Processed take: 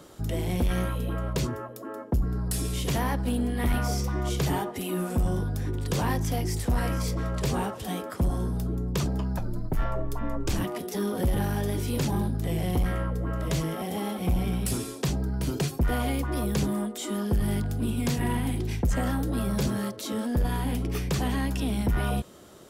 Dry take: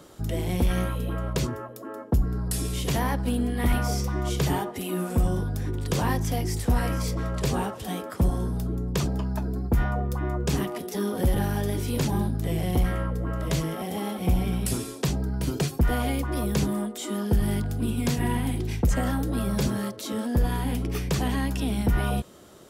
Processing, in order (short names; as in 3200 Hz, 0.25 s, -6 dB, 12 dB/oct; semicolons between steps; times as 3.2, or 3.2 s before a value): soft clip -18 dBFS, distortion -18 dB; 9.38–10.64 frequency shift -80 Hz